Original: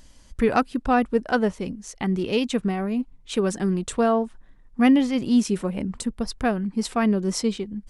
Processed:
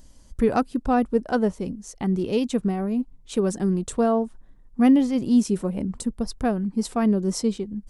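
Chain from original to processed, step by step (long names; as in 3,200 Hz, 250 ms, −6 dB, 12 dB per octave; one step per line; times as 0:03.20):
parametric band 2,300 Hz −9 dB 2.2 octaves
level +1 dB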